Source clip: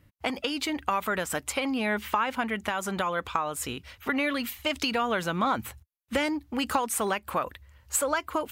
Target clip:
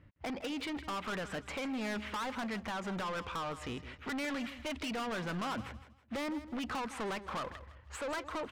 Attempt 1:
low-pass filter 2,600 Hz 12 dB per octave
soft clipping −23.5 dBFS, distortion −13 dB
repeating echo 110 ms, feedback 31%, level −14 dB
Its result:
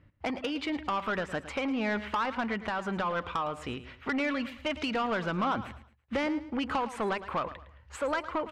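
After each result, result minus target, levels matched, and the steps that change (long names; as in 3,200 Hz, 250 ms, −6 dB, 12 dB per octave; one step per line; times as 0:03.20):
echo 51 ms early; soft clipping: distortion −8 dB
change: repeating echo 161 ms, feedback 31%, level −14 dB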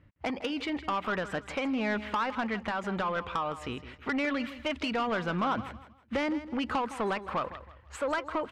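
soft clipping: distortion −8 dB
change: soft clipping −35 dBFS, distortion −5 dB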